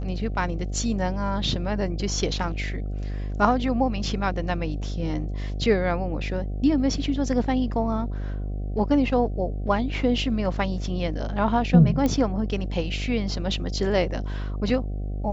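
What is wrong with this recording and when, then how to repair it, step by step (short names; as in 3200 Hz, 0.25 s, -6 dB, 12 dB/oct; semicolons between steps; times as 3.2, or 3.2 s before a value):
buzz 50 Hz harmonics 15 -29 dBFS
12.06 pop -12 dBFS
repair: de-click; de-hum 50 Hz, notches 15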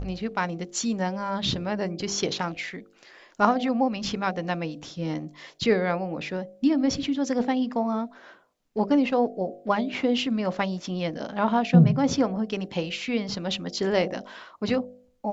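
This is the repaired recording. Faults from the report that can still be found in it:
none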